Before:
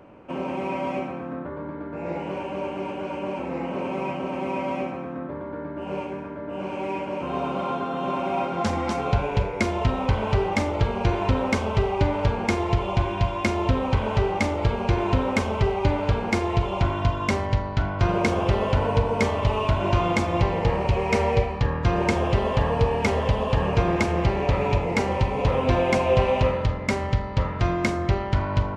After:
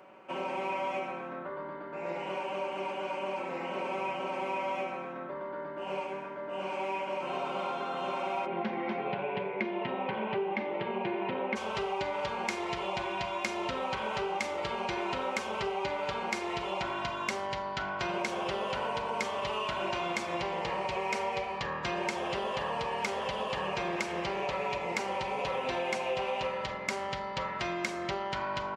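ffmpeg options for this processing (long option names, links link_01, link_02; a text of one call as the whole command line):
ffmpeg -i in.wav -filter_complex "[0:a]asplit=3[link_01][link_02][link_03];[link_01]afade=type=out:start_time=8.45:duration=0.02[link_04];[link_02]highpass=frequency=120:width=0.5412,highpass=frequency=120:width=1.3066,equalizer=frequency=140:width_type=q:width=4:gain=4,equalizer=frequency=210:width_type=q:width=4:gain=8,equalizer=frequency=370:width_type=q:width=4:gain=7,equalizer=frequency=1300:width_type=q:width=4:gain=-8,lowpass=frequency=2800:width=0.5412,lowpass=frequency=2800:width=1.3066,afade=type=in:start_time=8.45:duration=0.02,afade=type=out:start_time=11.55:duration=0.02[link_05];[link_03]afade=type=in:start_time=11.55:duration=0.02[link_06];[link_04][link_05][link_06]amix=inputs=3:normalize=0,highpass=frequency=1000:poles=1,aecho=1:1:5.3:0.48,acompressor=threshold=-30dB:ratio=4" out.wav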